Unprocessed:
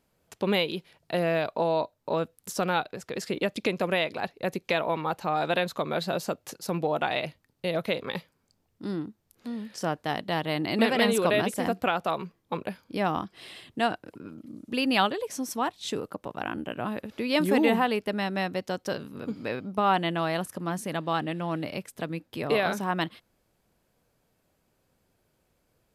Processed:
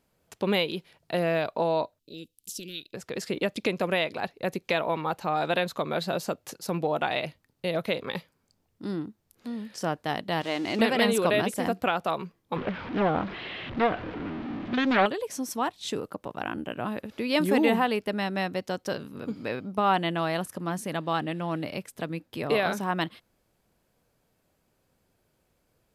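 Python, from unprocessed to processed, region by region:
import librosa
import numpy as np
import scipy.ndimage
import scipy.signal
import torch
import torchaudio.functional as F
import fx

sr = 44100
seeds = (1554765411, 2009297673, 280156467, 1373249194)

y = fx.chain(x, sr, fx.ellip_bandstop(low_hz=340.0, high_hz=2900.0, order=3, stop_db=80),
    fx.peak_eq(hz=150.0, db=-12.0, octaves=2.6), at=(1.99, 2.94))
y = fx.chain(y, sr, fx.crossing_spikes(level_db=-25.0),
    fx.lowpass(hz=4000.0, slope=12),
    fx.peak_eq(hz=150.0, db=-13.0, octaves=0.34), at=(10.41, 10.81))
y = fx.chain(y, sr, fx.zero_step(step_db=-31.0),
    fx.cheby2_lowpass(hz=11000.0, order=4, stop_db=70),
    fx.doppler_dist(depth_ms=0.49), at=(12.56, 15.06))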